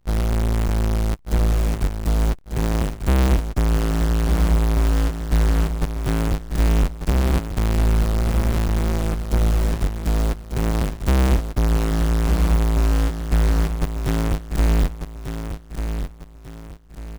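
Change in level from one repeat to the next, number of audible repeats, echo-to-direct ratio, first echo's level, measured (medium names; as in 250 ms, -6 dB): -9.0 dB, 4, -7.5 dB, -8.0 dB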